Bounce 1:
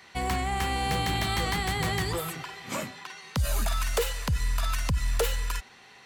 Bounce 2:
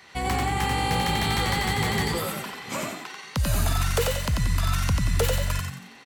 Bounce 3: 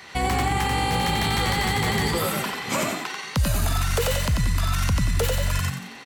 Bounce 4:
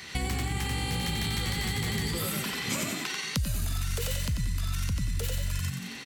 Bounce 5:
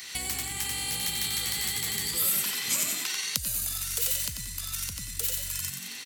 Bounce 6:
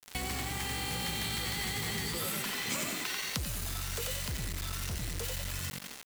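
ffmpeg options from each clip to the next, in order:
ffmpeg -i in.wav -filter_complex "[0:a]asplit=6[link_01][link_02][link_03][link_04][link_05][link_06];[link_02]adelay=90,afreqshift=47,volume=-3.5dB[link_07];[link_03]adelay=180,afreqshift=94,volume=-11.2dB[link_08];[link_04]adelay=270,afreqshift=141,volume=-19dB[link_09];[link_05]adelay=360,afreqshift=188,volume=-26.7dB[link_10];[link_06]adelay=450,afreqshift=235,volume=-34.5dB[link_11];[link_01][link_07][link_08][link_09][link_10][link_11]amix=inputs=6:normalize=0,volume=1.5dB" out.wav
ffmpeg -i in.wav -af "alimiter=limit=-21dB:level=0:latency=1:release=62,volume=7dB" out.wav
ffmpeg -i in.wav -af "equalizer=frequency=820:width=0.63:gain=-12,acompressor=threshold=-33dB:ratio=4,volume=4.5dB" out.wav
ffmpeg -i in.wav -af "lowshelf=frequency=290:gain=-8.5,crystalizer=i=4:c=0,volume=-5.5dB" out.wav
ffmpeg -i in.wav -af "lowpass=frequency=1300:poles=1,acrusher=bits=6:mix=0:aa=0.000001,volume=4dB" out.wav

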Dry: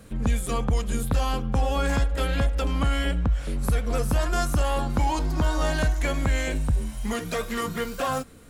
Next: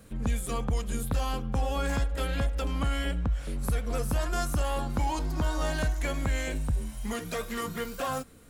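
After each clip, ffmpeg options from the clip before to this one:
ffmpeg -i in.wav -af "highshelf=frequency=11000:gain=5.5,volume=-5dB" out.wav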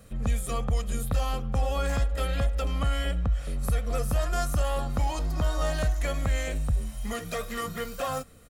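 ffmpeg -i in.wav -af "aecho=1:1:1.6:0.4" out.wav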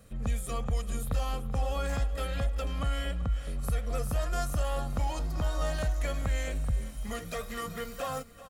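ffmpeg -i in.wav -af "aecho=1:1:386|772|1158|1544:0.158|0.0713|0.0321|0.0144,volume=-4dB" out.wav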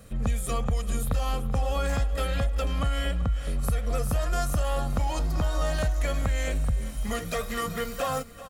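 ffmpeg -i in.wav -af "acompressor=threshold=-28dB:ratio=6,volume=6.5dB" out.wav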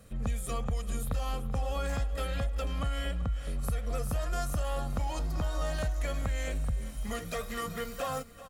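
ffmpeg -i in.wav -af "volume=-5.5dB" -ar 48000 -c:a libopus -b:a 256k out.opus

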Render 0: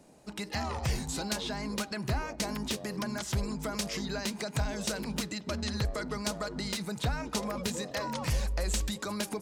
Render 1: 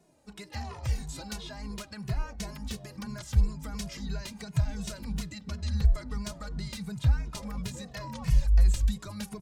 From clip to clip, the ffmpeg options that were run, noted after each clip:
ffmpeg -i in.wav -filter_complex "[0:a]asubboost=boost=9:cutoff=120,asplit=2[link_01][link_02];[link_02]adelay=2.3,afreqshift=-2.9[link_03];[link_01][link_03]amix=inputs=2:normalize=1,volume=-3.5dB" out.wav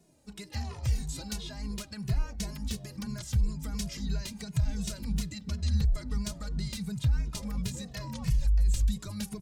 ffmpeg -i in.wav -af "equalizer=frequency=990:width=0.44:gain=-8,alimiter=limit=-22.5dB:level=0:latency=1:release=56,volume=3.5dB" out.wav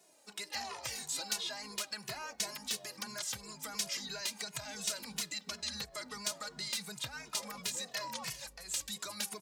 ffmpeg -i in.wav -filter_complex "[0:a]highpass=650,asplit=2[link_01][link_02];[link_02]asoftclip=type=tanh:threshold=-38dB,volume=-9.5dB[link_03];[link_01][link_03]amix=inputs=2:normalize=0,volume=3dB" out.wav

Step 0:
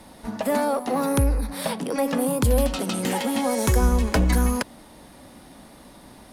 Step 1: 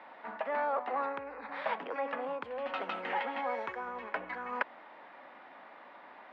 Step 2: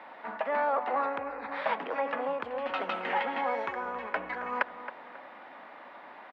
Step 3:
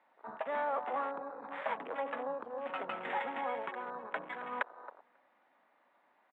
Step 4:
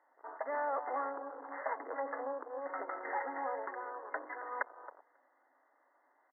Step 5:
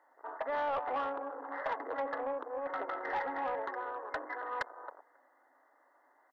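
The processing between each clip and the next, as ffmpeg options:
ffmpeg -i in.wav -af "lowpass=frequency=2300:width=0.5412,lowpass=frequency=2300:width=1.3066,areverse,acompressor=threshold=-26dB:ratio=6,areverse,highpass=820,volume=2.5dB" out.wav
ffmpeg -i in.wav -filter_complex "[0:a]asplit=2[link_01][link_02];[link_02]adelay=271,lowpass=frequency=2000:poles=1,volume=-11dB,asplit=2[link_03][link_04];[link_04]adelay=271,lowpass=frequency=2000:poles=1,volume=0.39,asplit=2[link_05][link_06];[link_06]adelay=271,lowpass=frequency=2000:poles=1,volume=0.39,asplit=2[link_07][link_08];[link_08]adelay=271,lowpass=frequency=2000:poles=1,volume=0.39[link_09];[link_01][link_03][link_05][link_07][link_09]amix=inputs=5:normalize=0,volume=4dB" out.wav
ffmpeg -i in.wav -af "afwtdn=0.0141,volume=-6dB" out.wav
ffmpeg -i in.wav -af "afftfilt=real='re*between(b*sr/4096,250,2100)':imag='im*between(b*sr/4096,250,2100)':win_size=4096:overlap=0.75,volume=-1dB" out.wav
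ffmpeg -i in.wav -af "asoftclip=type=tanh:threshold=-31dB,volume=4dB" out.wav

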